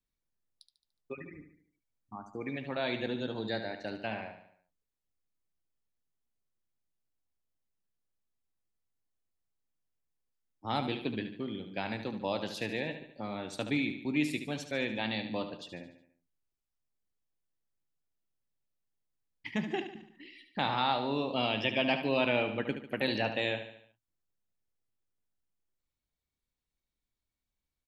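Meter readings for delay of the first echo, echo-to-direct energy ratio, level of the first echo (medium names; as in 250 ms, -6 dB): 73 ms, -8.5 dB, -9.5 dB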